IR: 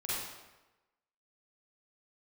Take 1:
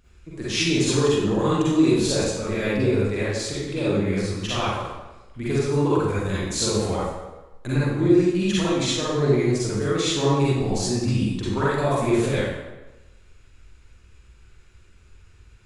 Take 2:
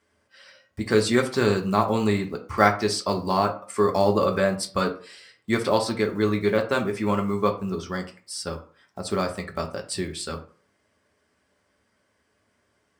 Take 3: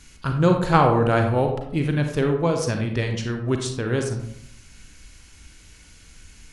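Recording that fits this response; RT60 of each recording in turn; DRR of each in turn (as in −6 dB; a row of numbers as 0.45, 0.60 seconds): 1; 1.1, 0.40, 0.75 seconds; −9.5, 2.5, 4.0 decibels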